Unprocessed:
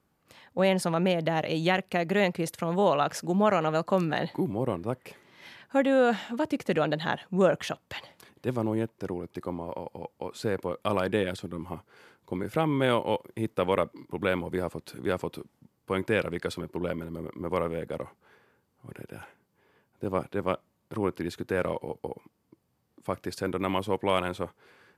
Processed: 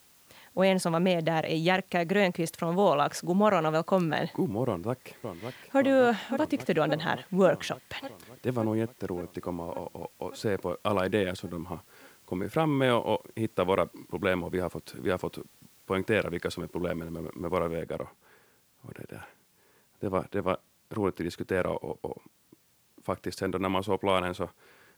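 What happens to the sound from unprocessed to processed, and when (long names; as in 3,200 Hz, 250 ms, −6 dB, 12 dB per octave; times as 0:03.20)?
0:04.66–0:05.79: delay throw 570 ms, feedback 75%, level −7.5 dB
0:17.82: noise floor change −60 dB −67 dB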